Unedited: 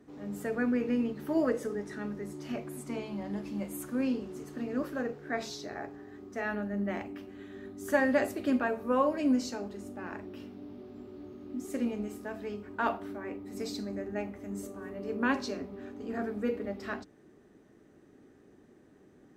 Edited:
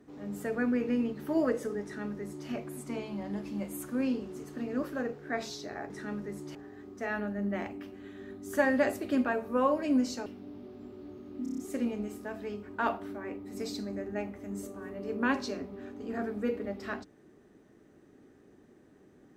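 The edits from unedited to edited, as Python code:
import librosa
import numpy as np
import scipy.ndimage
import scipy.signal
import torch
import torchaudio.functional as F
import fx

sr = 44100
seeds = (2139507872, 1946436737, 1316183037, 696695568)

y = fx.edit(x, sr, fx.duplicate(start_s=1.83, length_s=0.65, to_s=5.9),
    fx.cut(start_s=9.61, length_s=0.8),
    fx.stutter(start_s=11.58, slice_s=0.03, count=6), tone=tone)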